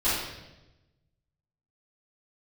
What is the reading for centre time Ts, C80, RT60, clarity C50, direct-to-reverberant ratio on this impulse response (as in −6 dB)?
73 ms, 3.5 dB, 1.0 s, −1.0 dB, −14.5 dB